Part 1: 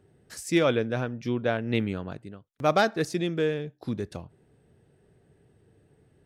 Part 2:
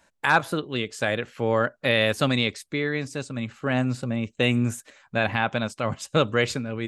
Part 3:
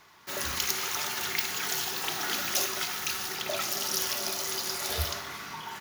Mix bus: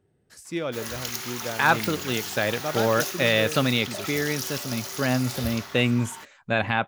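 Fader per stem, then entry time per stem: −7.0, 0.0, −3.0 decibels; 0.00, 1.35, 0.45 seconds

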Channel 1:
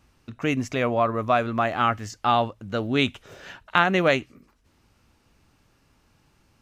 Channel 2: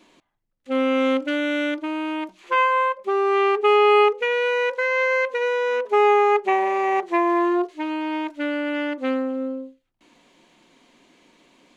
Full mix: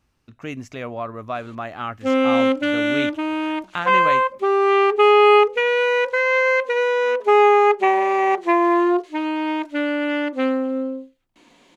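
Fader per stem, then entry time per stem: −7.0, +3.0 decibels; 0.00, 1.35 seconds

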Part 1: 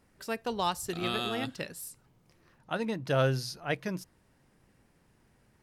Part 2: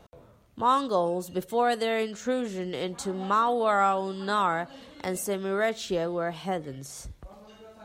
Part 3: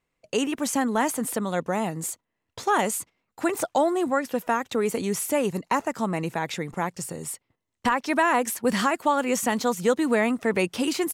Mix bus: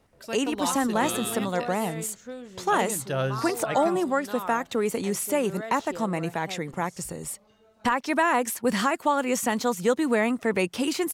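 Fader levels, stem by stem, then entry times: −1.0, −11.0, −1.0 decibels; 0.00, 0.00, 0.00 seconds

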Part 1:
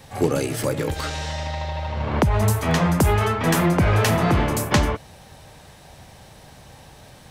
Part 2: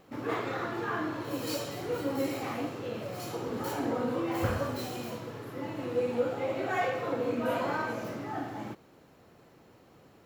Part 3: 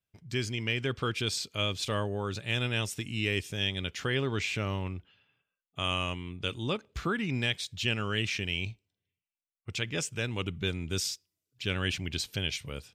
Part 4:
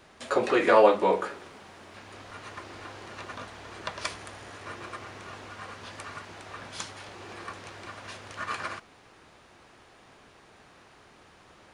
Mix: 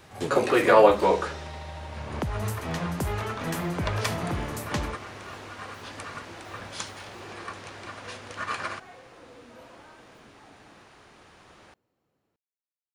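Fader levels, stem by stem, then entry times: −11.5 dB, −20.0 dB, muted, +2.0 dB; 0.00 s, 2.10 s, muted, 0.00 s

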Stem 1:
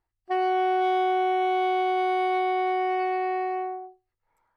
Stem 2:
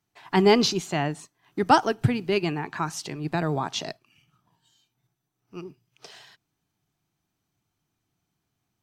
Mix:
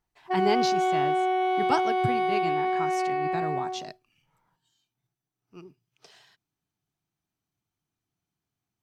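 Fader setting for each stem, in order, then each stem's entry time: −1.0, −8.0 decibels; 0.00, 0.00 seconds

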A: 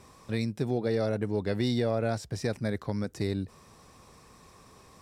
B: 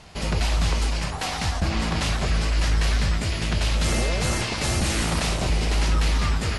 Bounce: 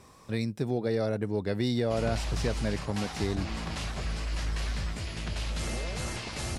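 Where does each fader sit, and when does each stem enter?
−0.5, −10.5 decibels; 0.00, 1.75 seconds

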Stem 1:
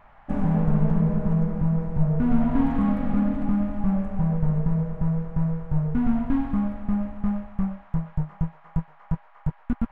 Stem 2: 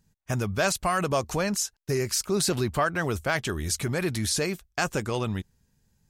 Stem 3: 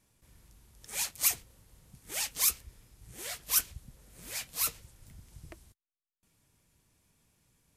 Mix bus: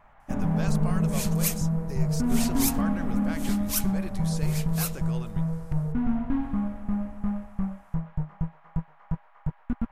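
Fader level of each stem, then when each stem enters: −3.5, −13.0, −1.5 decibels; 0.00, 0.00, 0.20 seconds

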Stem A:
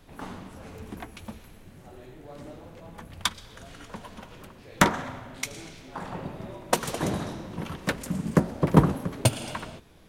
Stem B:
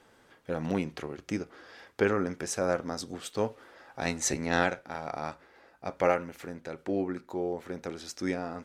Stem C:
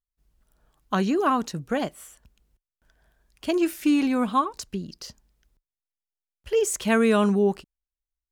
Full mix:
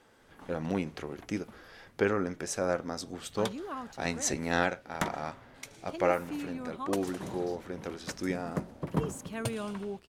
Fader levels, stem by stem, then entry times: −13.0, −1.5, −17.0 decibels; 0.20, 0.00, 2.45 seconds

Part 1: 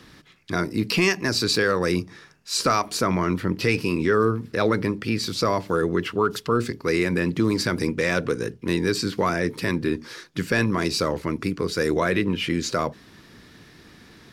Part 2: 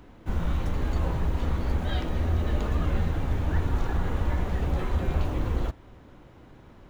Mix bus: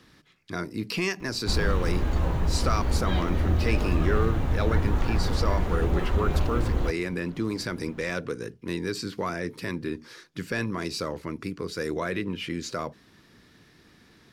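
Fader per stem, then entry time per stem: −7.5, +1.5 decibels; 0.00, 1.20 seconds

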